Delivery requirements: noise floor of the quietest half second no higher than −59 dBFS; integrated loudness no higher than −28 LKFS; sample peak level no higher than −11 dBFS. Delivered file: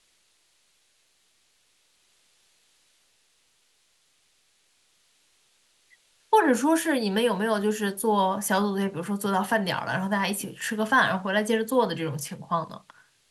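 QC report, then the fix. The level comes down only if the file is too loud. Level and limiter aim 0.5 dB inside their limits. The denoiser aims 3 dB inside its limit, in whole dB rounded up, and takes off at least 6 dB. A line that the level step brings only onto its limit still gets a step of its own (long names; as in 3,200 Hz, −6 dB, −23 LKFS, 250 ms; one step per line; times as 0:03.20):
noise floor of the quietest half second −67 dBFS: in spec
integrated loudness −25.0 LKFS: out of spec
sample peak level −8.5 dBFS: out of spec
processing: level −3.5 dB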